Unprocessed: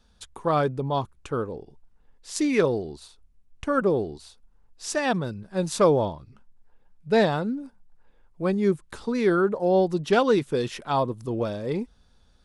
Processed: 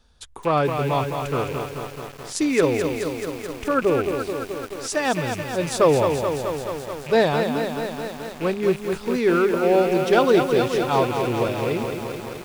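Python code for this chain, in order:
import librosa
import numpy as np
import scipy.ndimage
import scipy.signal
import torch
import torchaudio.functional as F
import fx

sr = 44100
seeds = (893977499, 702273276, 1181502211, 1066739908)

y = fx.rattle_buzz(x, sr, strikes_db=-41.0, level_db=-29.0)
y = fx.peak_eq(y, sr, hz=200.0, db=-10.5, octaves=0.2)
y = fx.echo_crushed(y, sr, ms=215, feedback_pct=80, bits=7, wet_db=-6.0)
y = y * 10.0 ** (2.5 / 20.0)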